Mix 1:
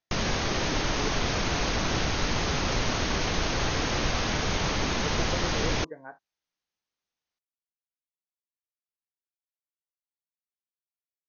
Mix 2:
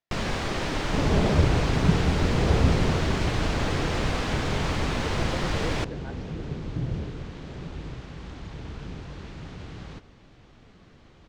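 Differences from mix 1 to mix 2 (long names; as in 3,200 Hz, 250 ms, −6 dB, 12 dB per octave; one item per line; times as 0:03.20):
first sound: remove linear-phase brick-wall low-pass 6,700 Hz
second sound: unmuted
master: add high-frequency loss of the air 130 metres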